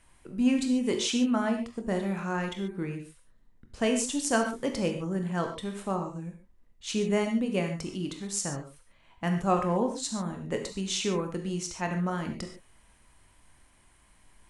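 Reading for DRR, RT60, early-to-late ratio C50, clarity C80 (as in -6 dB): 4.0 dB, not exponential, 7.0 dB, 10.0 dB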